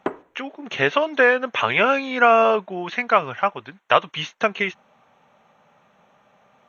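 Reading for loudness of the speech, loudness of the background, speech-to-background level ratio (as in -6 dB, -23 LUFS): -20.0 LUFS, -34.5 LUFS, 14.5 dB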